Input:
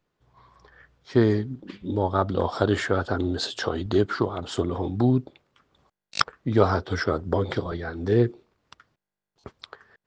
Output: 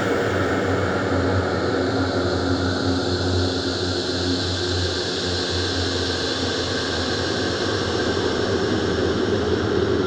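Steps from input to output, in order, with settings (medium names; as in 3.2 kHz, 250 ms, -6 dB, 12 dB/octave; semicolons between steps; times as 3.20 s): in parallel at +0.5 dB: compression 16:1, threshold -29 dBFS, peak gain reduction 18 dB; on the sum: integer overflow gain 2.5 dB; Paulstretch 11×, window 1.00 s, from 2.97 s; trim +2 dB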